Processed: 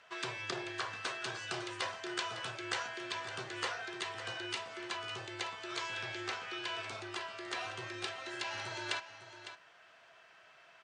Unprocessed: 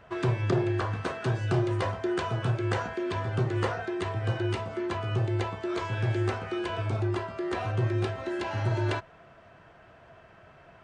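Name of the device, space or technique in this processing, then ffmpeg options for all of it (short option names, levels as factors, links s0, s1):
piezo pickup straight into a mixer: -filter_complex "[0:a]asettb=1/sr,asplit=3[s0][s1][s2];[s0]atrim=end=6.024[s3];[s1]atrim=start=6.02:end=6.68,asetpts=PTS-STARTPTS,afade=t=in:d=0.004:c=qsin,afade=t=out:st=0.656:d=0.004:c=qsin,lowpass=6500[s4];[s2]atrim=start=6.676[s5];[s3][s4]acrossfade=d=0.004:c1=hsin:c2=qsin[s6];[s6][s5]acrossfade=d=0.004:c1=qsin:c2=hsin,lowpass=5800,aderivative,aecho=1:1:555:0.251,volume=2.99"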